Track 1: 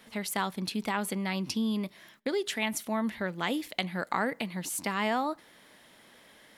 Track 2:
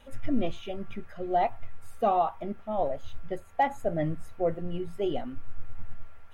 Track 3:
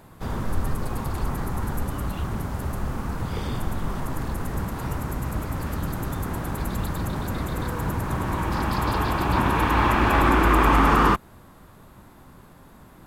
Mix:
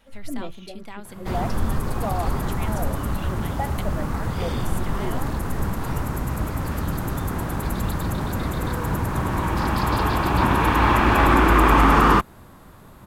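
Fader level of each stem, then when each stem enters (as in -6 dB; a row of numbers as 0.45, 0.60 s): -9.0, -4.5, +2.5 dB; 0.00, 0.00, 1.05 s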